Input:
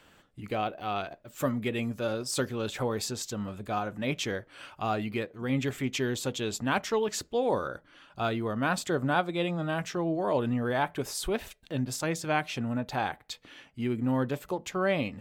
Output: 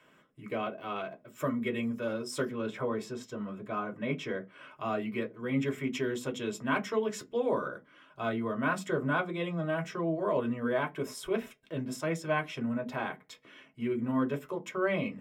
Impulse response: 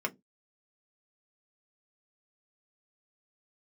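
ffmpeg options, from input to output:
-filter_complex "[0:a]asettb=1/sr,asplit=3[a][b][c];[a]atrim=end=2.514[d];[b]atrim=start=2.51:end=4.71,asetpts=PTS-STARTPTS,afade=t=in:d=0.004:c=qsin,afade=t=out:st=2.196:d=0.004:c=qsin,highshelf=f=5.2k:g=-10.5[e];[c]atrim=start=4.706[f];[d][e]acrossfade=d=0.004:c1=hsin:c2=qsin[g];[g][f]acrossfade=d=0.004:c1=qsin:c2=hsin[h];[1:a]atrim=start_sample=2205[i];[h][i]afir=irnorm=-1:irlink=0,volume=-7.5dB"

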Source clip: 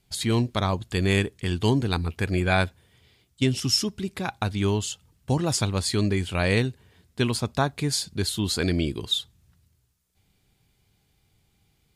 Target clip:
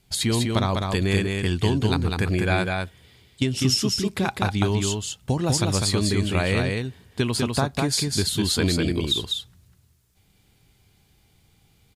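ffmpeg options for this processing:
-filter_complex "[0:a]acompressor=threshold=-24dB:ratio=6,asplit=2[a][b];[b]aecho=0:1:200:0.668[c];[a][c]amix=inputs=2:normalize=0,volume=5dB"

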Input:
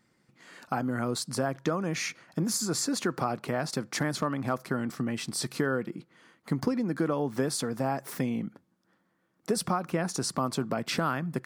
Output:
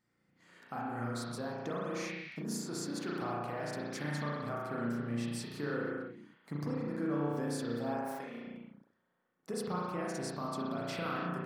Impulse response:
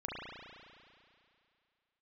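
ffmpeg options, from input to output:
-filter_complex "[0:a]asettb=1/sr,asplit=3[a][b][c];[a]atrim=end=8.074[d];[b]atrim=start=8.07:end=8.47,asetpts=PTS-STARTPTS,afade=t=in:d=0.004:c=qsin,afade=t=out:st=0.396:d=0.004:c=qsin,highpass=420[e];[c]atrim=start=8.466[f];[d][e]acrossfade=d=0.004:c1=hsin:c2=qsin[g];[g][f]acrossfade=d=0.004:c1=qsin:c2=hsin[h];[1:a]atrim=start_sample=2205,afade=t=out:st=0.39:d=0.01,atrim=end_sample=17640[i];[h][i]afir=irnorm=-1:irlink=0,volume=-9dB"

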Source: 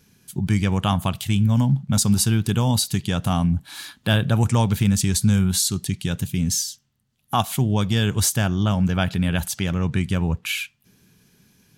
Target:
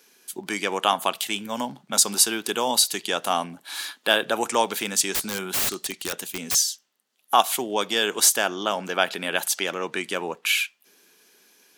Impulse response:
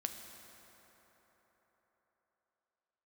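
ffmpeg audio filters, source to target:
-filter_complex "[0:a]highpass=f=360:w=0.5412,highpass=f=360:w=1.3066,asettb=1/sr,asplit=3[a][b][c];[a]atrim=end=5.144[d];[b]atrim=start=5.14:end=6.55,asetpts=PTS-STARTPTS,afade=t=in:d=0.004:c=qsin,afade=t=out:st=1.406:d=0.004:c=qsin,aeval=exprs='(mod(13.3*val(0)+1,2)-1)/13.3':c=same[e];[c]atrim=start=6.546[f];[d][e]acrossfade=d=0.004:c1=hsin:c2=qsin[g];[g][f]acrossfade=d=0.004:c1=qsin:c2=hsin,volume=4dB"

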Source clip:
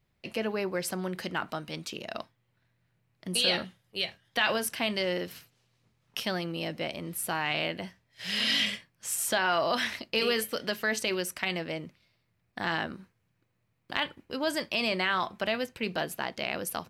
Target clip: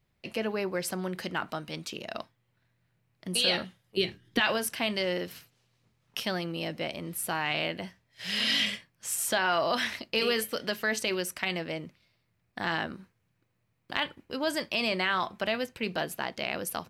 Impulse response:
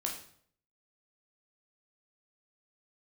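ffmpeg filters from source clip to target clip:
-filter_complex "[0:a]asettb=1/sr,asplit=3[a][b][c];[a]atrim=end=3.974[d];[b]atrim=start=3.97:end=4.4,asetpts=PTS-STARTPTS,afade=t=in:d=0.004:c=qsin,afade=t=out:st=0.426:d=0.004:c=qsin,lowshelf=f=470:t=q:w=3:g=9.5[e];[c]atrim=start=4.396[f];[d][e]acrossfade=d=0.004:c1=hsin:c2=qsin[g];[g][f]acrossfade=d=0.004:c1=qsin:c2=hsin"

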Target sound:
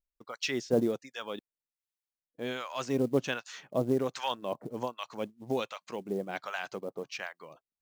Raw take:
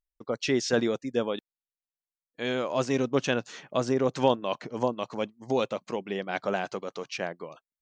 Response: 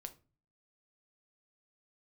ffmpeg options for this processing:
-filter_complex "[0:a]acrossover=split=880[a][b];[a]aeval=exprs='val(0)*(1-1/2+1/2*cos(2*PI*1.3*n/s))':c=same[c];[b]aeval=exprs='val(0)*(1-1/2-1/2*cos(2*PI*1.3*n/s))':c=same[d];[c][d]amix=inputs=2:normalize=0,acrusher=bits=7:mode=log:mix=0:aa=0.000001"

